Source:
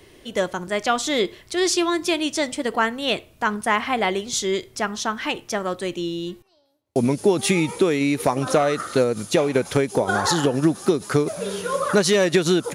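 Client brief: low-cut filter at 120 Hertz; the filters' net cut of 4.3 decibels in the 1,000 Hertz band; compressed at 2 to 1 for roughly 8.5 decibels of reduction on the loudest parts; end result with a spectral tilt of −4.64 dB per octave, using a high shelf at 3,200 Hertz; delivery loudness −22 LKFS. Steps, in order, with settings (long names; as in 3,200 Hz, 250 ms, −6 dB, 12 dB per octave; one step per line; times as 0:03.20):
high-pass filter 120 Hz
parametric band 1,000 Hz −5 dB
high-shelf EQ 3,200 Hz −8 dB
downward compressor 2 to 1, threshold −30 dBFS
level +8.5 dB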